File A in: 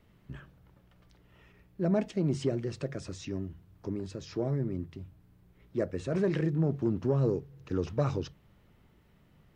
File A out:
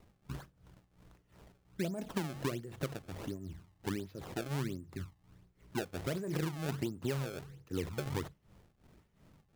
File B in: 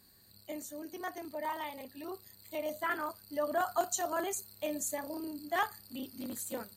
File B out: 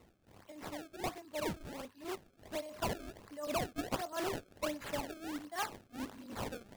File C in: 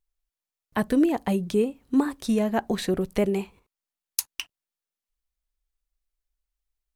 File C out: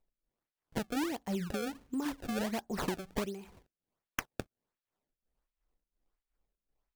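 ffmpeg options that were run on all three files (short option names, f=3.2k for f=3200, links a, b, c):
-af "tremolo=f=2.8:d=0.81,acompressor=threshold=-33dB:ratio=12,acrusher=samples=26:mix=1:aa=0.000001:lfo=1:lforange=41.6:lforate=1.4,volume=2dB"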